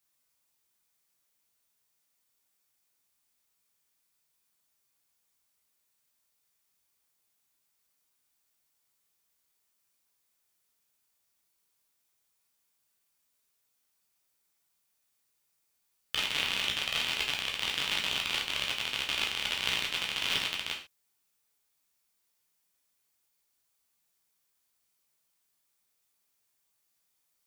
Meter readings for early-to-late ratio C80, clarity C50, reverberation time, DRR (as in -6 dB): 13.0 dB, 7.0 dB, not exponential, -1.5 dB